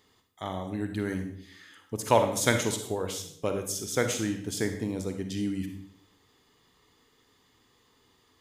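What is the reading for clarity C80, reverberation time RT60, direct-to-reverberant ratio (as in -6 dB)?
10.5 dB, 0.65 s, 5.5 dB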